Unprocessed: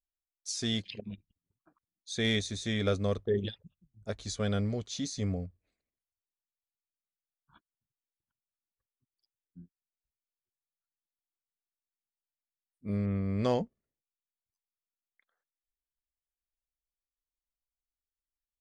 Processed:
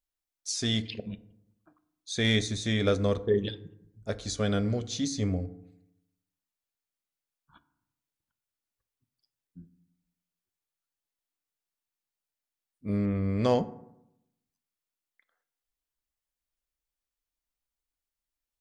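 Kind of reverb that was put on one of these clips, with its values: FDN reverb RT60 0.81 s, low-frequency decay 1.2×, high-frequency decay 0.45×, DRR 12 dB; gain +3.5 dB

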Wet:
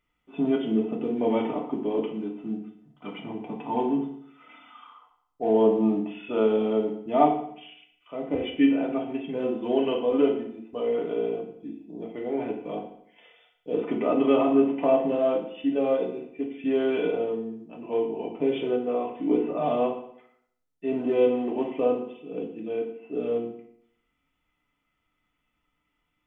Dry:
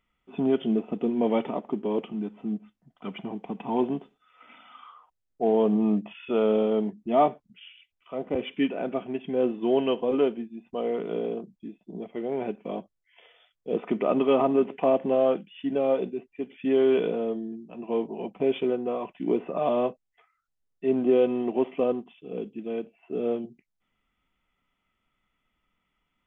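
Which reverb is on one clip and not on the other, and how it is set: FDN reverb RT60 0.68 s, low-frequency decay 1.05×, high-frequency decay 0.9×, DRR -0.5 dB; gain -3 dB

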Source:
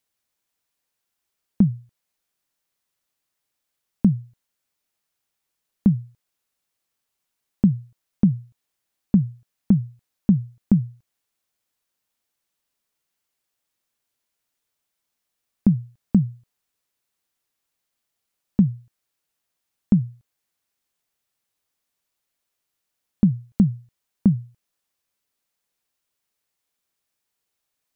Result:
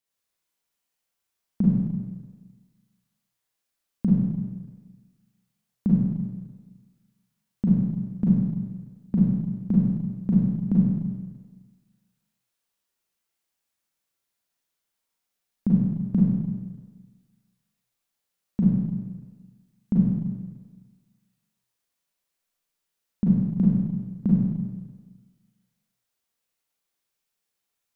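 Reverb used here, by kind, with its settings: Schroeder reverb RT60 1.4 s, combs from 33 ms, DRR -6 dB; gain -8.5 dB

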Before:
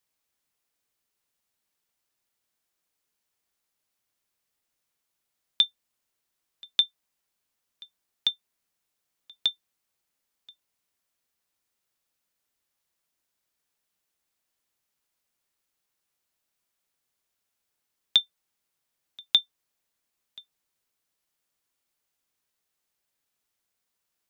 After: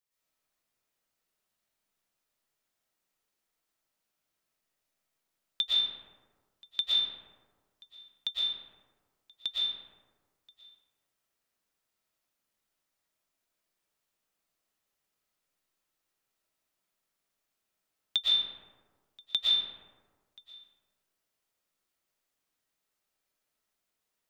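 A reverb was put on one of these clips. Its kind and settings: digital reverb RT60 1.5 s, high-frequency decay 0.4×, pre-delay 80 ms, DRR -8.5 dB; gain -9 dB

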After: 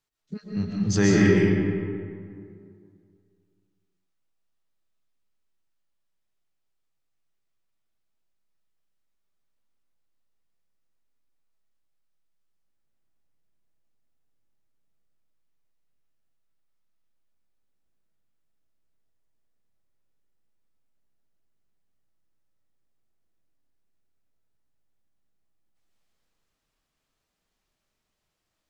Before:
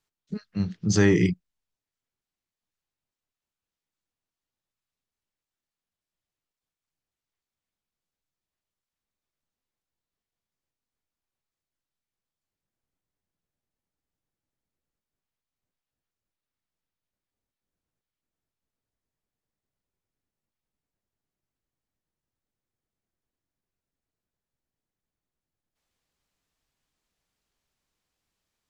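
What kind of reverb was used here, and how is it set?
digital reverb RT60 2.3 s, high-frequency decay 0.5×, pre-delay 90 ms, DRR -4 dB; gain -2.5 dB

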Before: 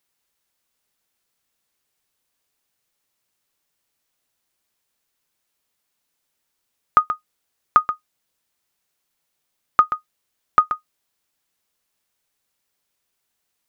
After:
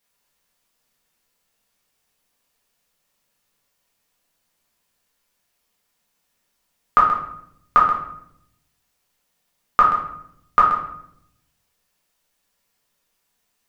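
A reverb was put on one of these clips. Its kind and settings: shoebox room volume 160 m³, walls mixed, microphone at 1.7 m; gain -1.5 dB

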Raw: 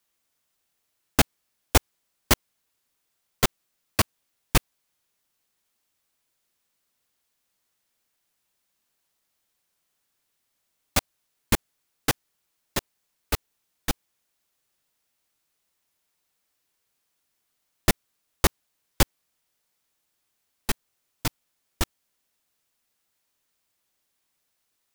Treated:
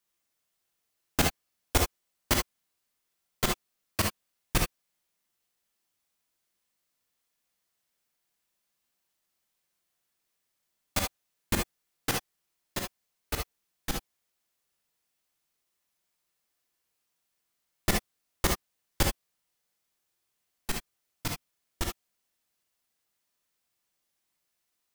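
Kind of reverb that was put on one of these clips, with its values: non-linear reverb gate 90 ms rising, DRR 1 dB; gain -6.5 dB

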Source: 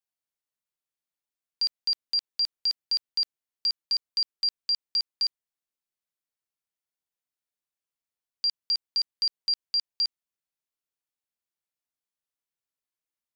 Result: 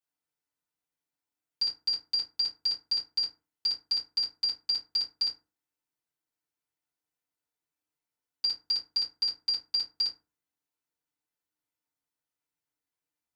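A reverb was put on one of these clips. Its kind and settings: FDN reverb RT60 0.32 s, low-frequency decay 1.2×, high-frequency decay 0.5×, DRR -8 dB; gain -6 dB

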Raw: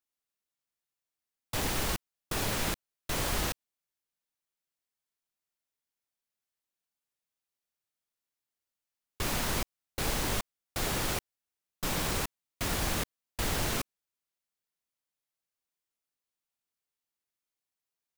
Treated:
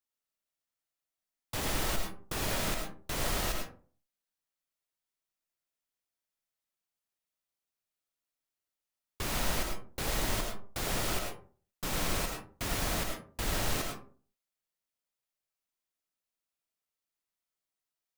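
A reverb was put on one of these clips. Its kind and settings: digital reverb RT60 0.44 s, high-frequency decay 0.45×, pre-delay 60 ms, DRR 2 dB; gain -3 dB

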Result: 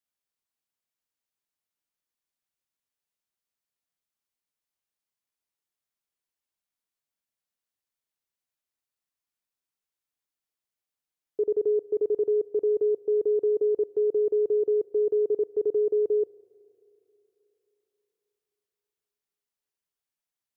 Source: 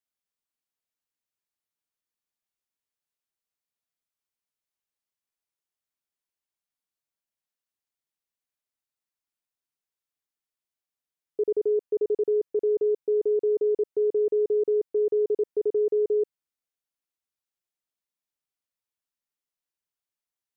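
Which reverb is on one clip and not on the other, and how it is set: spring tank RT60 3.6 s, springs 34/53 ms, chirp 25 ms, DRR 20 dB

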